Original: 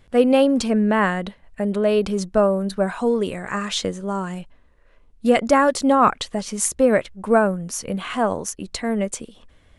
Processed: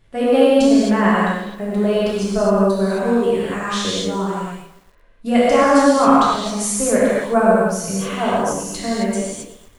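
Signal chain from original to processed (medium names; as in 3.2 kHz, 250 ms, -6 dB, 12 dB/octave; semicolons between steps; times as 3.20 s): gated-style reverb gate 290 ms flat, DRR -8 dB; bit-crushed delay 116 ms, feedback 55%, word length 6-bit, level -14 dB; trim -5.5 dB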